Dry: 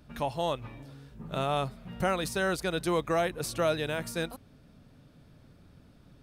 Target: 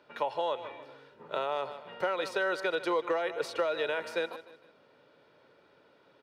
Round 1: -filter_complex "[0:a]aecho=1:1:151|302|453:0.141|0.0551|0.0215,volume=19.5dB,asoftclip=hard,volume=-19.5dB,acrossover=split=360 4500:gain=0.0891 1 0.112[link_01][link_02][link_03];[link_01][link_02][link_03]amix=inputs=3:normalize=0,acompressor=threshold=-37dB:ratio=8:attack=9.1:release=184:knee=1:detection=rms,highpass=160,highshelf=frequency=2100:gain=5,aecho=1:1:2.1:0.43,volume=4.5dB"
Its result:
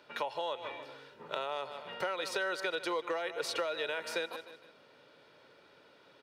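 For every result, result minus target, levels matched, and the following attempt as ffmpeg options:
downward compressor: peak gain reduction +6 dB; 4,000 Hz band +5.5 dB
-filter_complex "[0:a]aecho=1:1:151|302|453:0.141|0.0551|0.0215,volume=19.5dB,asoftclip=hard,volume=-19.5dB,acrossover=split=360 4500:gain=0.0891 1 0.112[link_01][link_02][link_03];[link_01][link_02][link_03]amix=inputs=3:normalize=0,acompressor=threshold=-30dB:ratio=8:attack=9.1:release=184:knee=1:detection=rms,highpass=160,highshelf=frequency=2100:gain=5,aecho=1:1:2.1:0.43,volume=4.5dB"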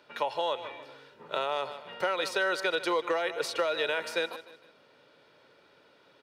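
4,000 Hz band +4.5 dB
-filter_complex "[0:a]aecho=1:1:151|302|453:0.141|0.0551|0.0215,volume=19.5dB,asoftclip=hard,volume=-19.5dB,acrossover=split=360 4500:gain=0.0891 1 0.112[link_01][link_02][link_03];[link_01][link_02][link_03]amix=inputs=3:normalize=0,acompressor=threshold=-30dB:ratio=8:attack=9.1:release=184:knee=1:detection=rms,highpass=160,highshelf=frequency=2100:gain=-3.5,aecho=1:1:2.1:0.43,volume=4.5dB"

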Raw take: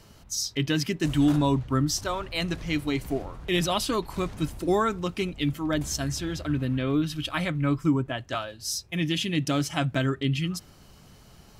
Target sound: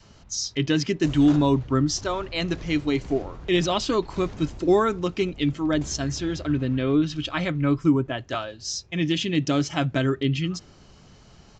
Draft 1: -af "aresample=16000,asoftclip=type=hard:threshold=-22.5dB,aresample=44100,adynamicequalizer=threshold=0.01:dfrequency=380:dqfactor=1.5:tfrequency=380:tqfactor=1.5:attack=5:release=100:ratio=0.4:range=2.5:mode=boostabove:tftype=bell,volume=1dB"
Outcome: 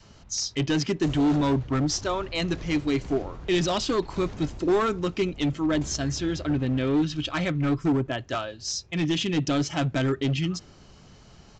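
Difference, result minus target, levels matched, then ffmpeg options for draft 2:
hard clipping: distortion +33 dB
-af "aresample=16000,asoftclip=type=hard:threshold=-13.5dB,aresample=44100,adynamicequalizer=threshold=0.01:dfrequency=380:dqfactor=1.5:tfrequency=380:tqfactor=1.5:attack=5:release=100:ratio=0.4:range=2.5:mode=boostabove:tftype=bell,volume=1dB"

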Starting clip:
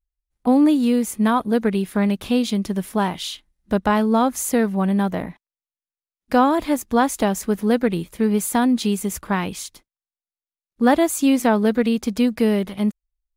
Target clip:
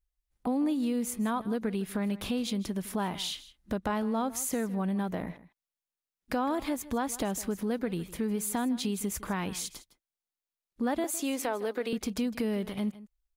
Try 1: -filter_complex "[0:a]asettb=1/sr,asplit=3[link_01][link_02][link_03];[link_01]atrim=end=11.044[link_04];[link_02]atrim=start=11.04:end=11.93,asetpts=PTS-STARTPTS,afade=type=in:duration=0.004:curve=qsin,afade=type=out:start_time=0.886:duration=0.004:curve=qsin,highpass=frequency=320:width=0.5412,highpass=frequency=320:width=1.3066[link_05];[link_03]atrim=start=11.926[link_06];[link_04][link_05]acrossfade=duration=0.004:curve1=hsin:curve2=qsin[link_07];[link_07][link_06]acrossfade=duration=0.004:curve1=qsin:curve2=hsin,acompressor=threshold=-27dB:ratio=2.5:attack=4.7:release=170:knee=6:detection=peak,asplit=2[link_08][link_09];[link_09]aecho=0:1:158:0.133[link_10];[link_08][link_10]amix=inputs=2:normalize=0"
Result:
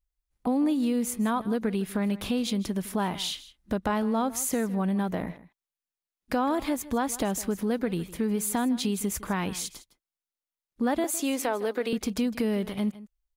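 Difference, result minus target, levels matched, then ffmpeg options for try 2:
downward compressor: peak gain reduction −3.5 dB
-filter_complex "[0:a]asettb=1/sr,asplit=3[link_01][link_02][link_03];[link_01]atrim=end=11.044[link_04];[link_02]atrim=start=11.04:end=11.93,asetpts=PTS-STARTPTS,afade=type=in:duration=0.004:curve=qsin,afade=type=out:start_time=0.886:duration=0.004:curve=qsin,highpass=frequency=320:width=0.5412,highpass=frequency=320:width=1.3066[link_05];[link_03]atrim=start=11.926[link_06];[link_04][link_05]acrossfade=duration=0.004:curve1=hsin:curve2=qsin[link_07];[link_07][link_06]acrossfade=duration=0.004:curve1=qsin:curve2=hsin,acompressor=threshold=-33dB:ratio=2.5:attack=4.7:release=170:knee=6:detection=peak,asplit=2[link_08][link_09];[link_09]aecho=0:1:158:0.133[link_10];[link_08][link_10]amix=inputs=2:normalize=0"

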